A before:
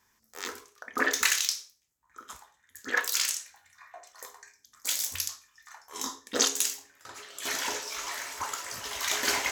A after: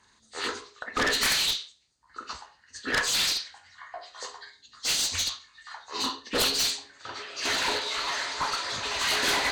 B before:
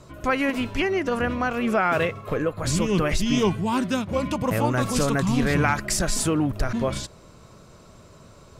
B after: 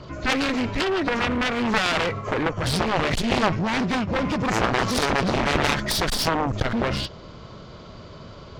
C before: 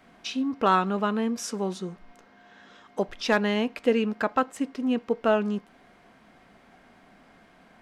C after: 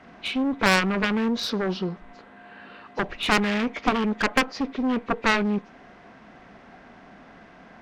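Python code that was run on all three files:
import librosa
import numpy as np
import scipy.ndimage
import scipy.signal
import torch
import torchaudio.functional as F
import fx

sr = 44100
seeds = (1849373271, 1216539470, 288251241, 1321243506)

y = fx.freq_compress(x, sr, knee_hz=1800.0, ratio=1.5)
y = fx.clip_asym(y, sr, top_db=-31.5, bottom_db=-10.5)
y = fx.cheby_harmonics(y, sr, harmonics=(3, 6, 7), levels_db=(-10, -26, -16), full_scale_db=-10.5)
y = y * 10.0 ** (7.0 / 20.0)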